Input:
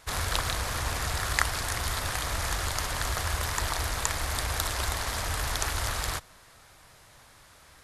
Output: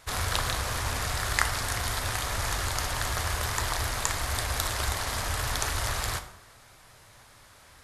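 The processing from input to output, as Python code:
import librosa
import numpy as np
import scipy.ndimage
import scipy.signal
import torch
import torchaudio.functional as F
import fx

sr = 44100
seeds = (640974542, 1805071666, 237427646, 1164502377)

y = fx.rev_plate(x, sr, seeds[0], rt60_s=0.8, hf_ratio=0.65, predelay_ms=0, drr_db=8.0)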